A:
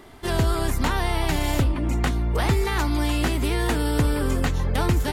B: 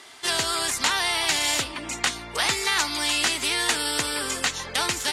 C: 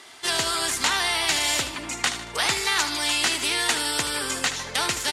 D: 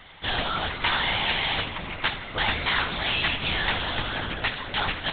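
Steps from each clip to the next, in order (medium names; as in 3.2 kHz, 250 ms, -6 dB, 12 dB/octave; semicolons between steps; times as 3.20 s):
frequency weighting ITU-R 468
feedback delay 76 ms, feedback 47%, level -11.5 dB
on a send at -15.5 dB: reverberation RT60 2.2 s, pre-delay 131 ms; on the sum: LPC vocoder at 8 kHz whisper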